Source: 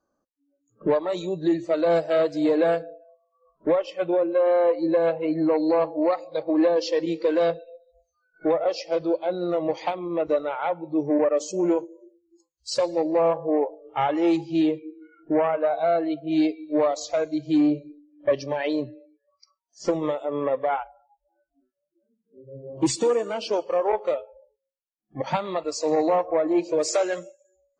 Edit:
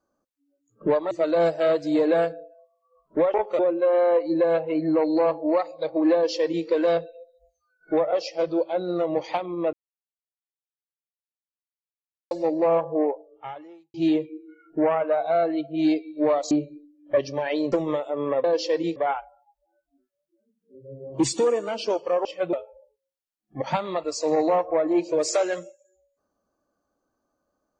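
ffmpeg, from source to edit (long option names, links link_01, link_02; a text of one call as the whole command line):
ffmpeg -i in.wav -filter_complex "[0:a]asplit=13[link_01][link_02][link_03][link_04][link_05][link_06][link_07][link_08][link_09][link_10][link_11][link_12][link_13];[link_01]atrim=end=1.112[link_14];[link_02]atrim=start=1.608:end=3.842[link_15];[link_03]atrim=start=23.878:end=24.132[link_16];[link_04]atrim=start=4.118:end=10.26,asetpts=PTS-STARTPTS,afade=type=out:start_time=6.138:duration=0.004:curve=hsin[link_17];[link_05]atrim=start=10.26:end=12.84,asetpts=PTS-STARTPTS,volume=0[link_18];[link_06]atrim=start=12.84:end=14.47,asetpts=PTS-STARTPTS,afade=type=in:duration=0.004:curve=hsin,afade=type=out:start_time=0.69:duration=0.94:curve=qua[link_19];[link_07]atrim=start=14.47:end=17.042,asetpts=PTS-STARTPTS,afade=type=in:duration=0.004:curve=hsin[link_20];[link_08]atrim=start=17.648:end=18.862[link_21];[link_09]atrim=start=19.868:end=20.592[link_22];[link_10]atrim=start=6.668:end=7.192[link_23];[link_11]atrim=start=20.588:end=23.882[link_24];[link_12]atrim=start=3.838:end=4.122[link_25];[link_13]atrim=start=24.128[link_26];[link_14][link_15]acrossfade=duration=0.004:curve1=hsin:curve2=hsin[link_27];[link_27][link_16]acrossfade=duration=0.004:curve1=hsin:curve2=hsin[link_28];[link_17][link_18][link_19][link_20]concat=n=4:v=0:a=1[link_29];[link_28][link_29]acrossfade=duration=0.004:curve1=hsin:curve2=hsin[link_30];[link_30][link_21]acrossfade=duration=0.004:curve1=hsin:curve2=hsin[link_31];[link_31][link_22]acrossfade=duration=0.004:curve1=hsin:curve2=hsin[link_32];[link_32][link_23]acrossfade=duration=0.004:curve1=hsin:curve2=hsin[link_33];[link_33][link_24]acrossfade=duration=0.004:curve1=hsin:curve2=hsin[link_34];[link_34][link_25]acrossfade=duration=0.004:curve1=hsin:curve2=hsin[link_35];[link_35][link_26]acrossfade=duration=0.004:curve1=hsin:curve2=hsin" out.wav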